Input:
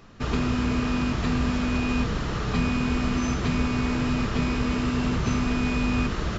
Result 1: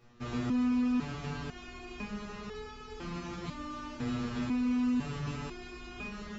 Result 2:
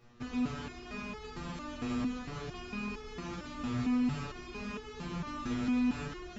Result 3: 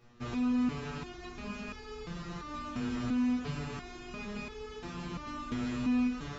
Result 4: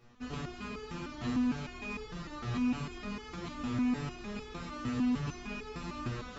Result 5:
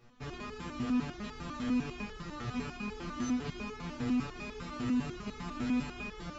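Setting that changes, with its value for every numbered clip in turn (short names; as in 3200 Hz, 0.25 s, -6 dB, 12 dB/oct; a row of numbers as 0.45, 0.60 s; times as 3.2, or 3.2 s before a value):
stepped resonator, rate: 2, 4.4, 2.9, 6.6, 10 Hz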